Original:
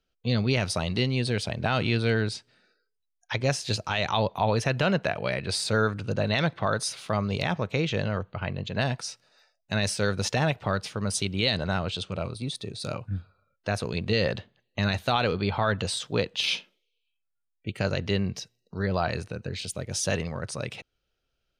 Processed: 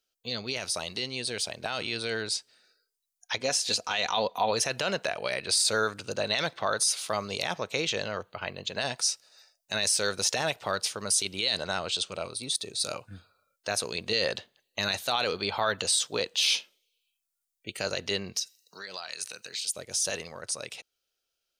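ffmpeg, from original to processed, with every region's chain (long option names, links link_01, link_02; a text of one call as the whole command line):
ffmpeg -i in.wav -filter_complex "[0:a]asettb=1/sr,asplit=3[link_01][link_02][link_03];[link_01]atrim=end=3.384[link_04];[link_02]atrim=start=3.38:end=4.51,asetpts=PTS-STARTPTS,afade=type=in:duration=0.004:curve=qsin,afade=type=out:start_time=1.126:duration=0.004:curve=qsin,highshelf=frequency=5100:gain=-6.5,aecho=1:1:4.1:0.44,atrim=end_sample=49833[link_05];[link_03]atrim=start=4.506[link_06];[link_04][link_05]acrossfade=duration=0.004:curve1=hsin:curve2=qsin[link_07];[link_07][link_06]acrossfade=duration=0.004:curve1=qsin:curve2=hsin,asettb=1/sr,asplit=3[link_08][link_09][link_10];[link_08]atrim=end=18.374[link_11];[link_09]atrim=start=18.37:end=19.74,asetpts=PTS-STARTPTS,afade=type=in:duration=0.004:curve=qsin,afade=type=out:start_time=1.366:duration=0.004:curve=qsin,highpass=frequency=120:width=0.5412,highpass=frequency=120:width=1.3066,tiltshelf=frequency=1100:gain=-9.5,acompressor=threshold=-35dB:ratio=6:attack=3.2:release=140:knee=1:detection=peak[link_12];[link_10]atrim=start=19.736[link_13];[link_11][link_12]acrossfade=duration=0.004:curve1=hsin:curve2=qsin[link_14];[link_14][link_13]acrossfade=duration=0.004:curve1=qsin:curve2=hsin,bass=frequency=250:gain=-15,treble=frequency=4000:gain=14,alimiter=limit=-14dB:level=0:latency=1:release=16,dynaudnorm=framelen=450:gausssize=11:maxgain=4dB,volume=-5dB" out.wav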